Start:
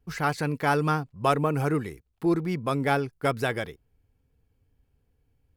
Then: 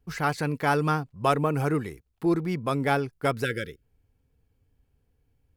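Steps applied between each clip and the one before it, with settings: spectral delete 3.44–3.83, 570–1300 Hz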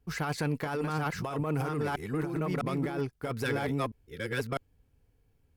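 reverse delay 0.653 s, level -2.5 dB; negative-ratio compressor -27 dBFS, ratio -1; tube stage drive 18 dB, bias 0.25; gain -2.5 dB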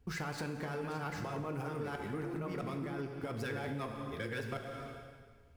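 median filter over 3 samples; plate-style reverb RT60 1.5 s, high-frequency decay 0.95×, DRR 4 dB; compressor 4:1, threshold -42 dBFS, peak gain reduction 13.5 dB; gain +3.5 dB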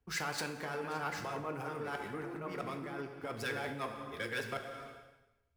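low shelf 330 Hz -11.5 dB; three-band expander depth 70%; gain +4 dB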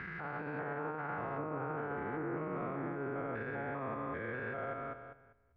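stepped spectrum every 0.2 s; limiter -38 dBFS, peak gain reduction 10.5 dB; LPF 1900 Hz 24 dB/oct; gain +8 dB

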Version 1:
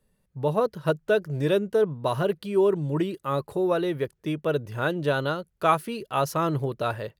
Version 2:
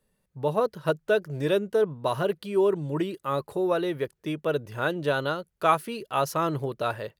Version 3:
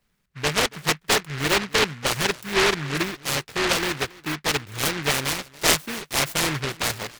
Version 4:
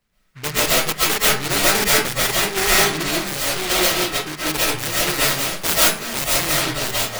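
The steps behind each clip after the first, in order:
low shelf 210 Hz -6 dB
outdoor echo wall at 48 m, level -21 dB; noise-modulated delay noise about 1700 Hz, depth 0.43 ms; gain +2 dB
self-modulated delay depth 0.82 ms; reverb RT60 0.35 s, pre-delay 95 ms, DRR -7.5 dB; gain -1.5 dB

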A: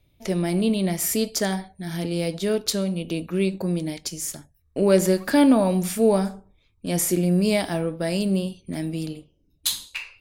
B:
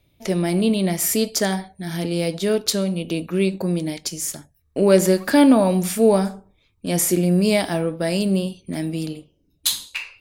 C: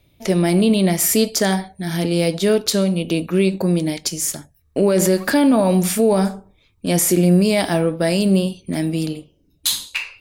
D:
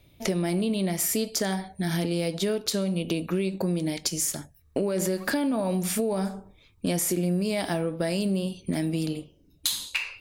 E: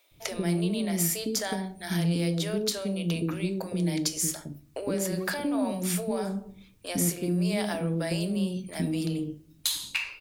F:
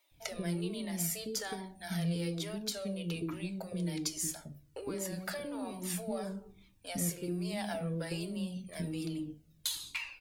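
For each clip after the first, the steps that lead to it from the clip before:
low shelf 75 Hz -7.5 dB; gain +3.5 dB
limiter -11.5 dBFS, peak gain reduction 10 dB; gain +4.5 dB
compressor 6:1, threshold -24 dBFS, peak gain reduction 12.5 dB
requantised 12-bit, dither triangular; bands offset in time highs, lows 0.11 s, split 480 Hz; on a send at -12 dB: reverb RT60 0.45 s, pre-delay 6 ms; on the sum: gain -1.5 dB
cascading flanger falling 1.2 Hz; gain -3 dB

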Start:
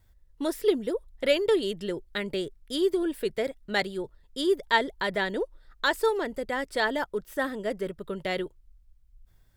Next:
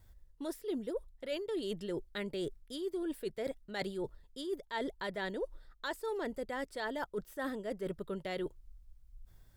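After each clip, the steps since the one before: bell 2300 Hz -3 dB 1.4 oct; reverse; compressor 12:1, threshold -36 dBFS, peak gain reduction 19.5 dB; reverse; gain +1.5 dB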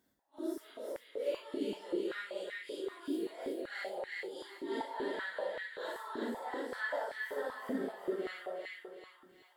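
phase scrambler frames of 0.2 s; split-band echo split 1000 Hz, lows 0.189 s, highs 0.368 s, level -3.5 dB; stepped high-pass 5.2 Hz 260–1900 Hz; gain -5.5 dB

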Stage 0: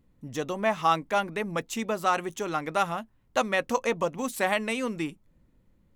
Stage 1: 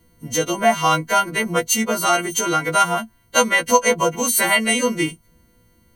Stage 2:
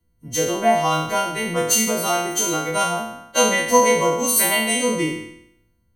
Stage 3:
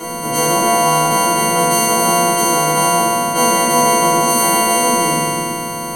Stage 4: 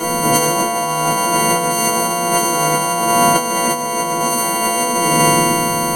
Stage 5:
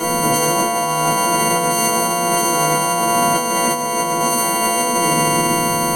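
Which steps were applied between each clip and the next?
frequency quantiser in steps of 2 st; ripple EQ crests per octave 1.9, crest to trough 14 dB; in parallel at -2 dB: compressor, threshold -29 dBFS, peak gain reduction 14.5 dB; on the sum: gain +4 dB
spectral trails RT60 0.91 s; dynamic EQ 1500 Hz, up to -7 dB, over -30 dBFS, Q 1.5; three-band expander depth 40%; gain -2 dB
per-bin compression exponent 0.2; shoebox room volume 47 m³, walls mixed, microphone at 1 m; gain -11 dB
negative-ratio compressor -17 dBFS, ratio -0.5; gain +2.5 dB
limiter -6.5 dBFS, peak gain reduction 5 dB

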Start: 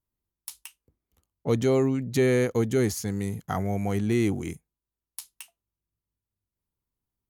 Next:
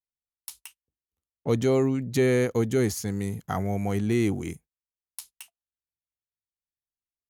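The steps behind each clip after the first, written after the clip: gate -48 dBFS, range -20 dB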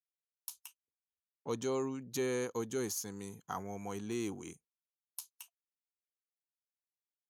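HPF 440 Hz 6 dB/oct; spectral noise reduction 14 dB; thirty-one-band EQ 630 Hz -7 dB, 1000 Hz +7 dB, 2000 Hz -9 dB, 6300 Hz +6 dB, 12500 Hz +6 dB; gain -8 dB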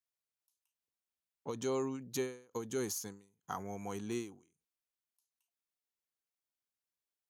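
ending taper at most 130 dB/s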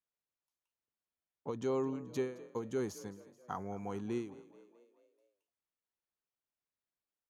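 LPF 1500 Hz 6 dB/oct; frequency-shifting echo 0.216 s, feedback 55%, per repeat +39 Hz, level -18.5 dB; gain +1.5 dB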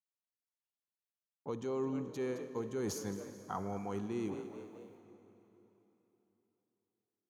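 gate with hold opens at -59 dBFS; reverse; compressor 6:1, threshold -45 dBFS, peak gain reduction 14 dB; reverse; reverb RT60 3.6 s, pre-delay 43 ms, DRR 11 dB; gain +9.5 dB

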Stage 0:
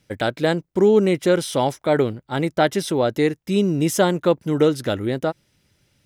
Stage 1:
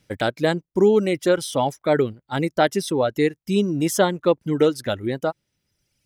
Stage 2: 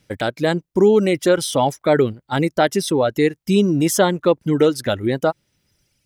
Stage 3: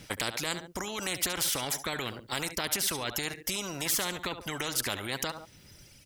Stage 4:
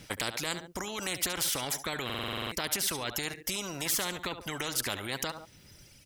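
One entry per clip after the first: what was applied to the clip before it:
reverb removal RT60 1.5 s
in parallel at -1 dB: limiter -17 dBFS, peak gain reduction 11 dB; on the sum: AGC gain up to 7.5 dB; gain -3 dB
limiter -12.5 dBFS, peak gain reduction 8 dB; feedback echo 70 ms, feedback 21%, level -21.5 dB; spectral compressor 4:1
stuck buffer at 2.05, samples 2048, times 9; gain -1 dB

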